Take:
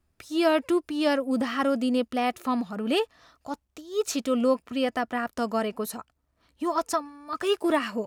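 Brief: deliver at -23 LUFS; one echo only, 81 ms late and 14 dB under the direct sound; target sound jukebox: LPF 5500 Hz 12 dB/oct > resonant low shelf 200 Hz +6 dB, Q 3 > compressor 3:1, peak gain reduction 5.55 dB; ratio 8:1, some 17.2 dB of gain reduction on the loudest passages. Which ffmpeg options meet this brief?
-af "acompressor=threshold=-37dB:ratio=8,lowpass=5.5k,lowshelf=f=200:t=q:w=3:g=6,aecho=1:1:81:0.2,acompressor=threshold=-42dB:ratio=3,volume=23dB"

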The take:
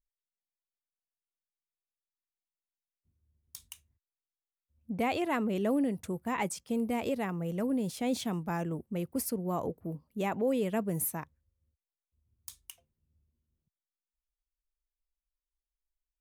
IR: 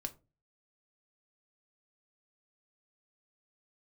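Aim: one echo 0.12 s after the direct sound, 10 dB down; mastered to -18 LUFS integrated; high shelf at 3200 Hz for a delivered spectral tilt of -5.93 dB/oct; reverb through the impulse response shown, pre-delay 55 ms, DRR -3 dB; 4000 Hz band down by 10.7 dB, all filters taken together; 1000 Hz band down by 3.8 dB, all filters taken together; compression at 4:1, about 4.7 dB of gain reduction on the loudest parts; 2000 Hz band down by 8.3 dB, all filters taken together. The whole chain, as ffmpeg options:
-filter_complex "[0:a]equalizer=f=1k:t=o:g=-3.5,equalizer=f=2k:t=o:g=-5,highshelf=f=3.2k:g=-6,equalizer=f=4k:t=o:g=-8,acompressor=threshold=-32dB:ratio=4,aecho=1:1:120:0.316,asplit=2[a][b];[1:a]atrim=start_sample=2205,adelay=55[c];[b][c]afir=irnorm=-1:irlink=0,volume=5dB[d];[a][d]amix=inputs=2:normalize=0,volume=13dB"

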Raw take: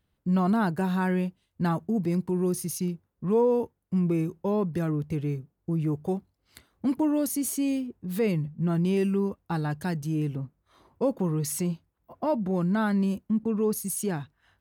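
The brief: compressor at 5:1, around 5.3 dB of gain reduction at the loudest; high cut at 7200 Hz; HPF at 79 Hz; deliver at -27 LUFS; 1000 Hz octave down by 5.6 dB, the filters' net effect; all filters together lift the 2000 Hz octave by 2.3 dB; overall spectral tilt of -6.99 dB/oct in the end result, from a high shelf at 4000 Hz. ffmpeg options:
-af "highpass=79,lowpass=7.2k,equalizer=f=1k:t=o:g=-9,equalizer=f=2k:t=o:g=8.5,highshelf=f=4k:g=-5,acompressor=threshold=-27dB:ratio=5,volume=5.5dB"

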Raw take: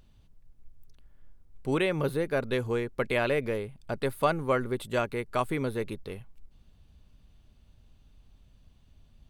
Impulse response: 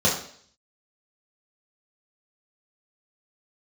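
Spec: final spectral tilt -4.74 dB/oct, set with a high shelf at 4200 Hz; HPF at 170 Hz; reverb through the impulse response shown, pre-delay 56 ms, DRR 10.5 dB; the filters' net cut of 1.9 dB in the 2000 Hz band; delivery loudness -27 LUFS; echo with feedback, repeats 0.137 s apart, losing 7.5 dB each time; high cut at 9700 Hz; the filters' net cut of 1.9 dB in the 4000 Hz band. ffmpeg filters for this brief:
-filter_complex "[0:a]highpass=170,lowpass=9.7k,equalizer=f=2k:t=o:g=-3,equalizer=f=4k:t=o:g=-5.5,highshelf=f=4.2k:g=8.5,aecho=1:1:137|274|411|548|685:0.422|0.177|0.0744|0.0312|0.0131,asplit=2[a][b];[1:a]atrim=start_sample=2205,adelay=56[c];[b][c]afir=irnorm=-1:irlink=0,volume=-26.5dB[d];[a][d]amix=inputs=2:normalize=0,volume=2dB"

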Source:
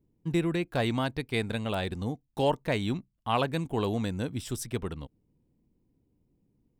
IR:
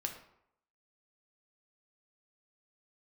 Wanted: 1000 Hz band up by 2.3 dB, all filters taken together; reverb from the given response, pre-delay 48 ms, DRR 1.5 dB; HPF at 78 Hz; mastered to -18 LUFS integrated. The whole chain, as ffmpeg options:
-filter_complex "[0:a]highpass=78,equalizer=f=1k:t=o:g=3,asplit=2[a][b];[1:a]atrim=start_sample=2205,adelay=48[c];[b][c]afir=irnorm=-1:irlink=0,volume=-2dB[d];[a][d]amix=inputs=2:normalize=0,volume=10dB"

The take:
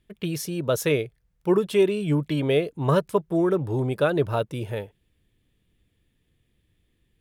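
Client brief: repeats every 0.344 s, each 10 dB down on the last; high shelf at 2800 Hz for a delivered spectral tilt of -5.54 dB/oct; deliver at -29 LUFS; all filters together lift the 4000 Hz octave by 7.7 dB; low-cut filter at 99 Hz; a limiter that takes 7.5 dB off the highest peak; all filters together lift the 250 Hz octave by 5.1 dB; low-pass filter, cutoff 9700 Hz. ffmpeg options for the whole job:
-af "highpass=99,lowpass=9.7k,equalizer=f=250:t=o:g=8,highshelf=f=2.8k:g=7,equalizer=f=4k:t=o:g=4.5,alimiter=limit=-13dB:level=0:latency=1,aecho=1:1:344|688|1032|1376:0.316|0.101|0.0324|0.0104,volume=-5.5dB"

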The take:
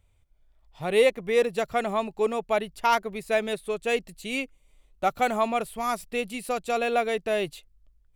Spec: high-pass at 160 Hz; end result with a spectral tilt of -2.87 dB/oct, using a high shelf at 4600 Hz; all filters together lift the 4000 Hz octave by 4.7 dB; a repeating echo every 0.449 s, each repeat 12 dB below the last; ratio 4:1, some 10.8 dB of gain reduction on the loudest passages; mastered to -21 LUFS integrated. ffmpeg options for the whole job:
-af "highpass=160,equalizer=f=4k:t=o:g=4.5,highshelf=f=4.6k:g=3.5,acompressor=threshold=-29dB:ratio=4,aecho=1:1:449|898|1347:0.251|0.0628|0.0157,volume=12dB"

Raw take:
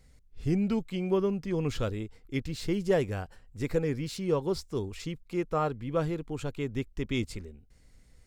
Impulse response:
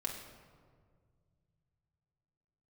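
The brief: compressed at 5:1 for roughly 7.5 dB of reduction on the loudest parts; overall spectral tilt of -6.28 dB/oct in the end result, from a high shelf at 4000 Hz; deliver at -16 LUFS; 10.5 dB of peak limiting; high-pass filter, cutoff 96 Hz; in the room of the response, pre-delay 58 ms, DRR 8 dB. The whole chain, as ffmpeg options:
-filter_complex "[0:a]highpass=96,highshelf=f=4k:g=-7,acompressor=threshold=-30dB:ratio=5,alimiter=level_in=8.5dB:limit=-24dB:level=0:latency=1,volume=-8.5dB,asplit=2[a][b];[1:a]atrim=start_sample=2205,adelay=58[c];[b][c]afir=irnorm=-1:irlink=0,volume=-9.5dB[d];[a][d]amix=inputs=2:normalize=0,volume=25dB"

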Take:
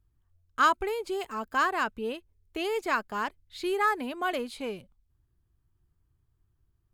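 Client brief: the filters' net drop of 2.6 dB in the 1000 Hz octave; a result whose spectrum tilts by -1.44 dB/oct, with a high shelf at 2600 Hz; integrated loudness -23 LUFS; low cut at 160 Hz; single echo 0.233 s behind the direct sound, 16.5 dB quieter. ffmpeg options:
-af "highpass=160,equalizer=f=1k:t=o:g=-5,highshelf=f=2.6k:g=8,aecho=1:1:233:0.15,volume=7dB"

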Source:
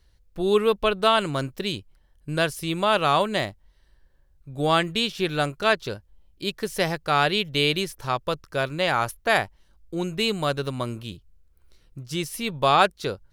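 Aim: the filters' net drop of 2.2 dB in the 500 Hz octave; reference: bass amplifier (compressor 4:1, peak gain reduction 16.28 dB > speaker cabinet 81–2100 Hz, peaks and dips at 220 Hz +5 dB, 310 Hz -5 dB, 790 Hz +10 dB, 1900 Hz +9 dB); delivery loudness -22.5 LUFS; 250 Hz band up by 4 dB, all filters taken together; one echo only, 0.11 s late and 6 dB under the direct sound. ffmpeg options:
-af "equalizer=f=250:t=o:g=5,equalizer=f=500:t=o:g=-6.5,aecho=1:1:110:0.501,acompressor=threshold=-33dB:ratio=4,highpass=f=81:w=0.5412,highpass=f=81:w=1.3066,equalizer=f=220:t=q:w=4:g=5,equalizer=f=310:t=q:w=4:g=-5,equalizer=f=790:t=q:w=4:g=10,equalizer=f=1.9k:t=q:w=4:g=9,lowpass=f=2.1k:w=0.5412,lowpass=f=2.1k:w=1.3066,volume=11.5dB"

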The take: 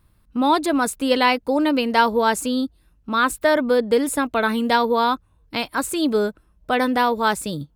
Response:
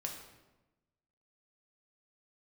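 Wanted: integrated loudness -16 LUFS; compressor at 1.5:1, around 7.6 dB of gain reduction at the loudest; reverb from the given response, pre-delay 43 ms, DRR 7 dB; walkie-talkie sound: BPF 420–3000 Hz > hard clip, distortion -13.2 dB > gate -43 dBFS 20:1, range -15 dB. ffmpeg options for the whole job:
-filter_complex "[0:a]acompressor=threshold=-34dB:ratio=1.5,asplit=2[a][b];[1:a]atrim=start_sample=2205,adelay=43[c];[b][c]afir=irnorm=-1:irlink=0,volume=-6.5dB[d];[a][d]amix=inputs=2:normalize=0,highpass=420,lowpass=3k,asoftclip=type=hard:threshold=-21.5dB,agate=range=-15dB:threshold=-43dB:ratio=20,volume=13.5dB"

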